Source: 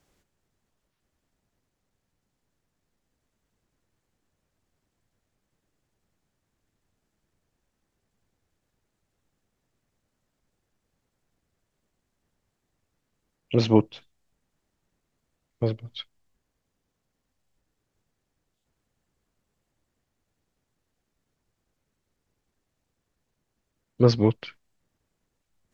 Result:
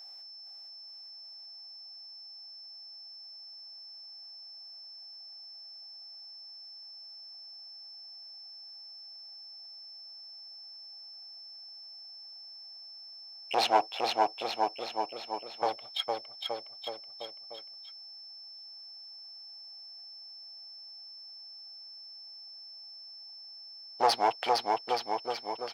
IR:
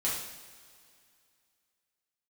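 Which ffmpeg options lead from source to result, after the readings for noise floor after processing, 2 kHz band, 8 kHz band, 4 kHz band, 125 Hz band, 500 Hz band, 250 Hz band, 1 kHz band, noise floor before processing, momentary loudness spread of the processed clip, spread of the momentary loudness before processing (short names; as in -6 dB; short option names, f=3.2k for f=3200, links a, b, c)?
-48 dBFS, +6.5 dB, n/a, +7.5 dB, under -30 dB, -4.5 dB, -17.0 dB, +12.0 dB, -80 dBFS, 16 LU, 19 LU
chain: -filter_complex "[0:a]aeval=exprs='if(lt(val(0),0),0.708*val(0),val(0))':c=same,asplit=2[a][b];[b]aecho=0:1:460|874|1247|1582|1884:0.631|0.398|0.251|0.158|0.1[c];[a][c]amix=inputs=2:normalize=0,aeval=exprs='val(0)+0.00447*sin(2*PI*5300*n/s)':c=same,asplit=2[d][e];[e]adynamicsmooth=sensitivity=8:basefreq=2.7k,volume=1dB[f];[d][f]amix=inputs=2:normalize=0,highshelf=f=2k:g=8,asoftclip=type=tanh:threshold=-14dB,highpass=f=750:t=q:w=4.9,volume=-4.5dB"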